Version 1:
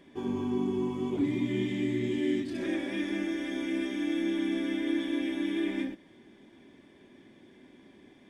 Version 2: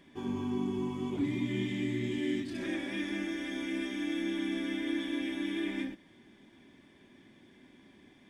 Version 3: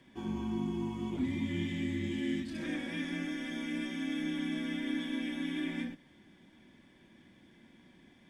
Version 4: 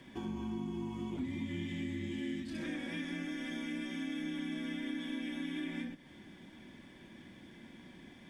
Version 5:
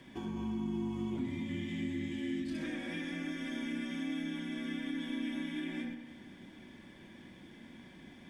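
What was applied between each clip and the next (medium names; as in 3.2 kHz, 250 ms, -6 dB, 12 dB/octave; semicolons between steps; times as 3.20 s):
peaking EQ 450 Hz -6 dB 1.5 oct
frequency shift -27 Hz; trim -1.5 dB
compression 2.5:1, threshold -47 dBFS, peak gain reduction 12.5 dB; trim +6 dB
feedback echo behind a low-pass 101 ms, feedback 62%, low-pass 2.9 kHz, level -9 dB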